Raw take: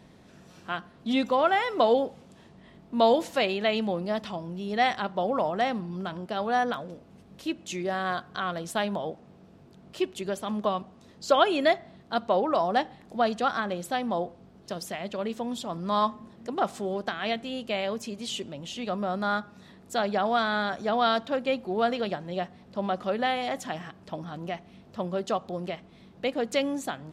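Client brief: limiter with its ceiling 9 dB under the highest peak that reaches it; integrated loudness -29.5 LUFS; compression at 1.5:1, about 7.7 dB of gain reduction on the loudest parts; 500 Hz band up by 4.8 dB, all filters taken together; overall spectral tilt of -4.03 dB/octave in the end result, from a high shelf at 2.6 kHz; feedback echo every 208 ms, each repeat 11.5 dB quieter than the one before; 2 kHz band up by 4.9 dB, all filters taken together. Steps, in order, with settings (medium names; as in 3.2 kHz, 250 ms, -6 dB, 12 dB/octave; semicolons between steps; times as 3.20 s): peaking EQ 500 Hz +5.5 dB; peaking EQ 2 kHz +4 dB; treble shelf 2.6 kHz +4.5 dB; compression 1.5:1, threshold -33 dBFS; peak limiter -19.5 dBFS; feedback delay 208 ms, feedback 27%, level -11.5 dB; trim +2 dB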